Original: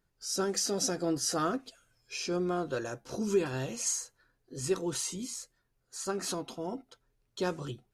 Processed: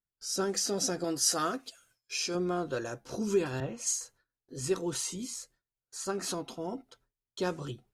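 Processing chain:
noise gate with hold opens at −55 dBFS
0:01.04–0:02.35: spectral tilt +2 dB per octave
0:03.60–0:04.01: multiband upward and downward expander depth 100%

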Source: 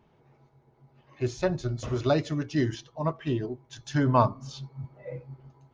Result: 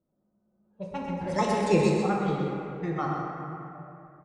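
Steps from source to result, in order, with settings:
source passing by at 0:02.35, 39 m/s, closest 15 metres
low-pass that shuts in the quiet parts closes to 390 Hz, open at −28.5 dBFS
single-tap delay 173 ms −6.5 dB
dense smooth reverb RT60 3.6 s, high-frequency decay 0.45×, pre-delay 0 ms, DRR −1.5 dB
wrong playback speed 33 rpm record played at 45 rpm
level +1 dB

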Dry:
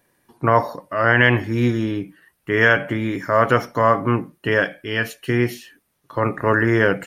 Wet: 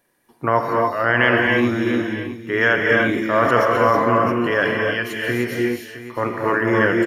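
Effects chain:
parametric band 80 Hz −7.5 dB 1.8 octaves
single-tap delay 664 ms −13.5 dB
reverb whose tail is shaped and stops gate 330 ms rising, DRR 0 dB
0:02.81–0:04.90: level that may fall only so fast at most 30 dB per second
level −2 dB

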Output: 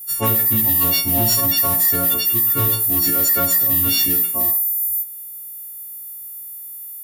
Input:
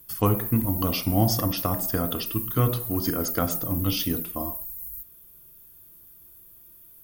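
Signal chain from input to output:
every partial snapped to a pitch grid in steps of 4 semitones
gain into a clipping stage and back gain 14.5 dB
level +1.5 dB

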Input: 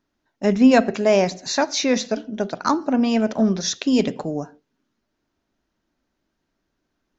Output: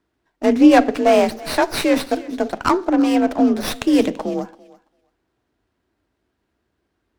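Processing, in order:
frequency shifter +42 Hz
feedback echo with a high-pass in the loop 335 ms, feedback 16%, high-pass 590 Hz, level −18.5 dB
windowed peak hold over 5 samples
level +3 dB

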